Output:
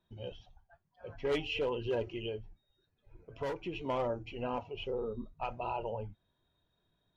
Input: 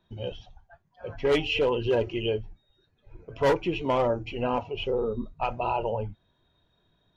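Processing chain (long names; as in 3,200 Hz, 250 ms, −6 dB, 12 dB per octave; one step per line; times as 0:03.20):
0:02.06–0:03.75: downward compressor, threshold −25 dBFS, peak gain reduction 6.5 dB
level −9 dB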